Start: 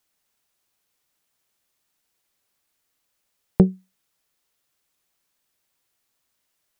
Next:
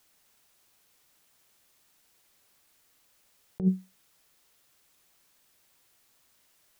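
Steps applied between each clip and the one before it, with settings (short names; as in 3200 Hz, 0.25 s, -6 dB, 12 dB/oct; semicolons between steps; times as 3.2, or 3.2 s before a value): negative-ratio compressor -26 dBFS, ratio -1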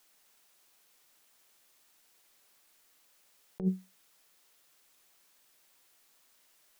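bell 71 Hz -14 dB 2.2 oct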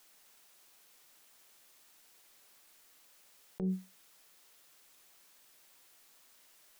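limiter -30 dBFS, peak gain reduction 10.5 dB; gain +3.5 dB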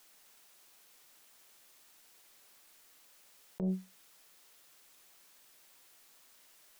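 Doppler distortion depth 0.51 ms; gain +1 dB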